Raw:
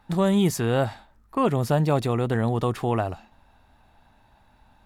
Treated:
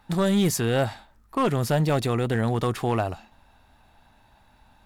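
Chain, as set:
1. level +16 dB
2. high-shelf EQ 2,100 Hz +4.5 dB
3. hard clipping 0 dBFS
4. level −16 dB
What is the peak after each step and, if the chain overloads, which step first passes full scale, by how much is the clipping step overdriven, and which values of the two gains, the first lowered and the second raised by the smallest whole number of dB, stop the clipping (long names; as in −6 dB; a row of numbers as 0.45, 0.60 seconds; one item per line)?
+6.0, +6.5, 0.0, −16.0 dBFS
step 1, 6.5 dB
step 1 +9 dB, step 4 −9 dB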